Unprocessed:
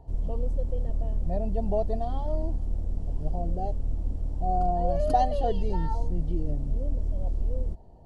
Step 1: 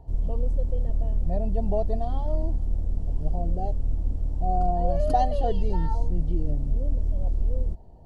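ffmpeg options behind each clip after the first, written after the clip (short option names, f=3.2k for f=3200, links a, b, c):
-af "lowshelf=f=150:g=3.5"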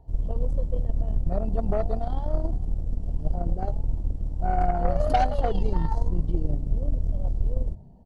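-filter_complex "[0:a]asplit=5[a][b][c][d][e];[b]adelay=93,afreqshift=50,volume=-19.5dB[f];[c]adelay=186,afreqshift=100,volume=-25dB[g];[d]adelay=279,afreqshift=150,volume=-30.5dB[h];[e]adelay=372,afreqshift=200,volume=-36dB[i];[a][f][g][h][i]amix=inputs=5:normalize=0,aeval=exprs='0.316*(cos(1*acos(clip(val(0)/0.316,-1,1)))-cos(1*PI/2))+0.02*(cos(4*acos(clip(val(0)/0.316,-1,1)))-cos(4*PI/2))+0.0447*(cos(6*acos(clip(val(0)/0.316,-1,1)))-cos(6*PI/2))+0.02*(cos(7*acos(clip(val(0)/0.316,-1,1)))-cos(7*PI/2))+0.0224*(cos(8*acos(clip(val(0)/0.316,-1,1)))-cos(8*PI/2))':c=same"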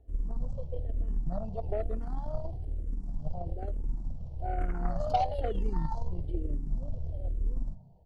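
-filter_complex "[0:a]asplit=2[a][b];[b]afreqshift=-1.1[c];[a][c]amix=inputs=2:normalize=1,volume=-4.5dB"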